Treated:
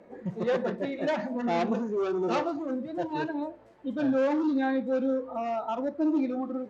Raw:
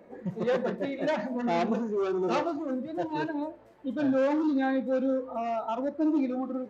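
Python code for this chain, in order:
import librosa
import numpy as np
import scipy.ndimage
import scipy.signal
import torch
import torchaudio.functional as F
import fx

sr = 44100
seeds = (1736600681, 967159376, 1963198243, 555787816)

y = scipy.signal.sosfilt(scipy.signal.butter(2, 9700.0, 'lowpass', fs=sr, output='sos'), x)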